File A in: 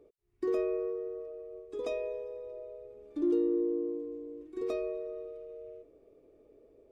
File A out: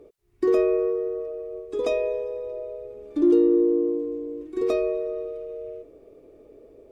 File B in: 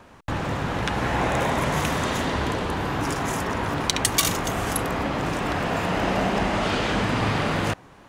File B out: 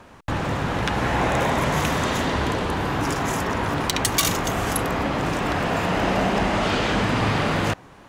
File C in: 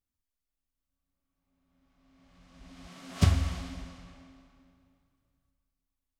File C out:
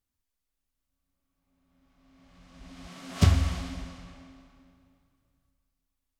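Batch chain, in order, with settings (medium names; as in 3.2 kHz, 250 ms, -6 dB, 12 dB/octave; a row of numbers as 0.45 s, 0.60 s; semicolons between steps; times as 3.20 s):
sine folder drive 6 dB, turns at -2.5 dBFS; dynamic bell 9.3 kHz, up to -4 dB, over -42 dBFS, Q 4.8; peak normalisation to -9 dBFS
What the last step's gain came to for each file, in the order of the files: +0.5 dB, -7.5 dB, -6.5 dB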